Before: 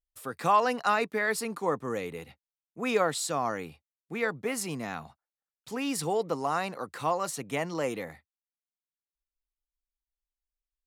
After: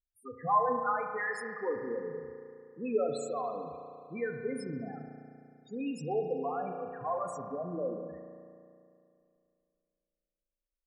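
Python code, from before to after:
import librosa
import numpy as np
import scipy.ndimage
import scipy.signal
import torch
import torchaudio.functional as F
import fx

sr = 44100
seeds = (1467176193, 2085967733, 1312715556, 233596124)

y = fx.low_shelf(x, sr, hz=400.0, db=-9.5, at=(0.95, 1.55))
y = fx.spec_topn(y, sr, count=4)
y = fx.rev_spring(y, sr, rt60_s=2.5, pass_ms=(34,), chirp_ms=45, drr_db=4.5)
y = y * 10.0 ** (-2.5 / 20.0)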